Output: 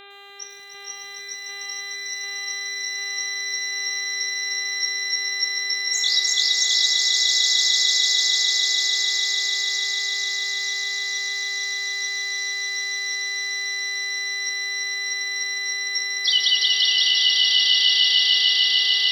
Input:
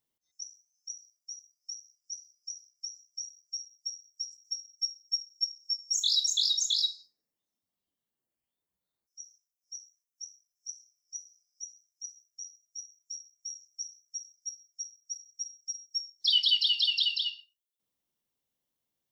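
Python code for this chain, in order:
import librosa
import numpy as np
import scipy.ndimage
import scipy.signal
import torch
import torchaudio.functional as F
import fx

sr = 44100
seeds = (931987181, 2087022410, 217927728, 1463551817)

y = fx.gate_flip(x, sr, shuts_db=-34.0, range_db=-25, at=(13.15, 14.18))
y = fx.dmg_buzz(y, sr, base_hz=400.0, harmonics=10, level_db=-49.0, tilt_db=-1, odd_only=False)
y = fx.echo_swell(y, sr, ms=149, loudest=8, wet_db=-5.0)
y = fx.echo_crushed(y, sr, ms=104, feedback_pct=55, bits=8, wet_db=-12.0)
y = y * 10.0 ** (4.5 / 20.0)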